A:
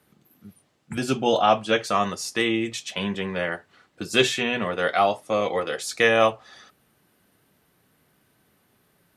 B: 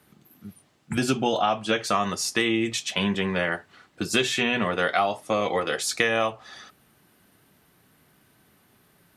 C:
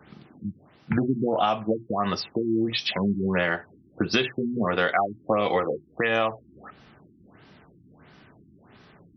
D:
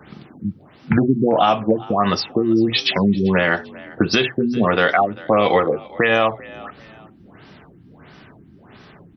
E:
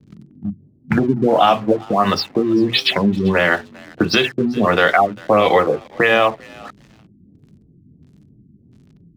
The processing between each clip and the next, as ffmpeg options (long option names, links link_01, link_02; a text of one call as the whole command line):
ffmpeg -i in.wav -af "acompressor=threshold=-22dB:ratio=10,equalizer=frequency=510:width_type=o:width=0.46:gain=-3.5,volume=4dB" out.wav
ffmpeg -i in.wav -af "acompressor=threshold=-32dB:ratio=2.5,afftfilt=real='re*lt(b*sr/1024,350*pow(6100/350,0.5+0.5*sin(2*PI*1.5*pts/sr)))':imag='im*lt(b*sr/1024,350*pow(6100/350,0.5+0.5*sin(2*PI*1.5*pts/sr)))':win_size=1024:overlap=0.75,volume=9dB" out.wav
ffmpeg -i in.wav -filter_complex "[0:a]asplit=3[link_01][link_02][link_03];[link_02]adelay=393,afreqshift=46,volume=-22dB[link_04];[link_03]adelay=786,afreqshift=92,volume=-31.1dB[link_05];[link_01][link_04][link_05]amix=inputs=3:normalize=0,alimiter=level_in=10.5dB:limit=-1dB:release=50:level=0:latency=1,volume=-2.5dB" out.wav
ffmpeg -i in.wav -filter_complex "[0:a]acrossover=split=310[link_01][link_02];[link_01]flanger=delay=19.5:depth=5.2:speed=2.8[link_03];[link_02]aeval=exprs='sgn(val(0))*max(abs(val(0))-0.00944,0)':channel_layout=same[link_04];[link_03][link_04]amix=inputs=2:normalize=0,volume=3dB" out.wav